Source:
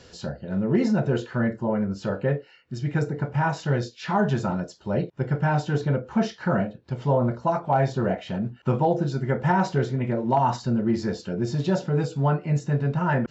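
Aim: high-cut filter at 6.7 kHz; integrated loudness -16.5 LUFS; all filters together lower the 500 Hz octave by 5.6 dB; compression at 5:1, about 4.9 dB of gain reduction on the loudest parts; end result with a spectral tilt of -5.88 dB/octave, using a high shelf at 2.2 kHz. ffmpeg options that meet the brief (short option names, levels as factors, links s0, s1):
-af "lowpass=6700,equalizer=f=500:t=o:g=-8,highshelf=f=2200:g=7.5,acompressor=threshold=0.0631:ratio=5,volume=4.73"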